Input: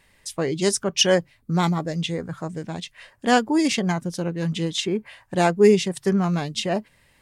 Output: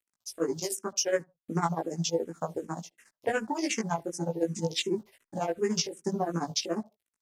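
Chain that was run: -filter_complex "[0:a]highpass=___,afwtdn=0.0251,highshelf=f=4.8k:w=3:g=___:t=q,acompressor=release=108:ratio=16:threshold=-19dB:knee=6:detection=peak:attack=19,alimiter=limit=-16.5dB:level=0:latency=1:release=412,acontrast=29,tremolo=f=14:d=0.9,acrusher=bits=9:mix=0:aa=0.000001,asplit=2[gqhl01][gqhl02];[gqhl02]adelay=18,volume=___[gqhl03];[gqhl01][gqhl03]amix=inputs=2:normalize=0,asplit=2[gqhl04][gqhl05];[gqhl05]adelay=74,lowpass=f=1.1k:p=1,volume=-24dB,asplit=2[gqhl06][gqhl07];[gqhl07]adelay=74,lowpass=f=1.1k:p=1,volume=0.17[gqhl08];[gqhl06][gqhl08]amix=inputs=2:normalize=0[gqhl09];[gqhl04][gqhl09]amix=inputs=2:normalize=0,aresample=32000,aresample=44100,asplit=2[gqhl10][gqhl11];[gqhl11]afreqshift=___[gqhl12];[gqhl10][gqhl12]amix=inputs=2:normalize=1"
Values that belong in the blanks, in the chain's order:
310, 8.5, -2.5dB, -2.7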